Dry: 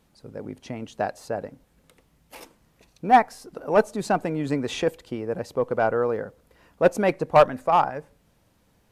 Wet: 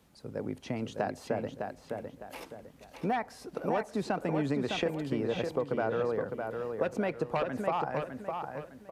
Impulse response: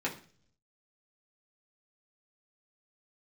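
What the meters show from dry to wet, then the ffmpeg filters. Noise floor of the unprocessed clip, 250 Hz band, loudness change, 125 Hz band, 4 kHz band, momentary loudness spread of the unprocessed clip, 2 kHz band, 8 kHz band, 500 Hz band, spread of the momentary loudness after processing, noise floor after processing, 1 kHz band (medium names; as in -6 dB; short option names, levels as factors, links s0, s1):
-64 dBFS, -4.5 dB, -10.0 dB, -4.0 dB, -5.0 dB, 19 LU, -8.0 dB, -9.5 dB, -8.5 dB, 11 LU, -56 dBFS, -12.0 dB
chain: -filter_complex "[0:a]highpass=44,acrossover=split=4200[s0][s1];[s1]acompressor=threshold=0.00282:ratio=4:attack=1:release=60[s2];[s0][s2]amix=inputs=2:normalize=0,acrossover=split=150|1700[s3][s4][s5];[s4]alimiter=limit=0.178:level=0:latency=1[s6];[s3][s6][s5]amix=inputs=3:normalize=0,acompressor=threshold=0.0447:ratio=10,asplit=2[s7][s8];[s8]adelay=607,lowpass=f=4000:p=1,volume=0.562,asplit=2[s9][s10];[s10]adelay=607,lowpass=f=4000:p=1,volume=0.35,asplit=2[s11][s12];[s12]adelay=607,lowpass=f=4000:p=1,volume=0.35,asplit=2[s13][s14];[s14]adelay=607,lowpass=f=4000:p=1,volume=0.35[s15];[s7][s9][s11][s13][s15]amix=inputs=5:normalize=0"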